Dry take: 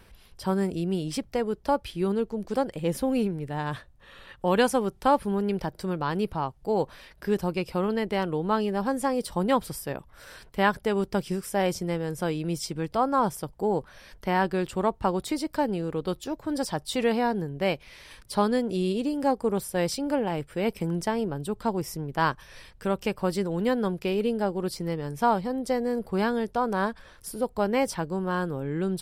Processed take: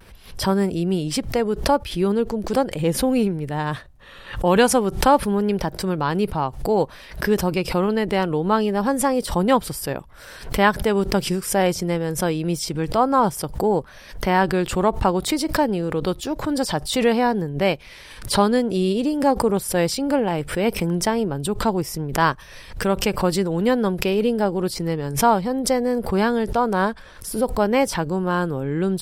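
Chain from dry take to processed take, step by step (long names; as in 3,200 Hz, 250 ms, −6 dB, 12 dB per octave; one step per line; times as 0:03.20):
pitch vibrato 0.59 Hz 31 cents
background raised ahead of every attack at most 120 dB per second
level +6 dB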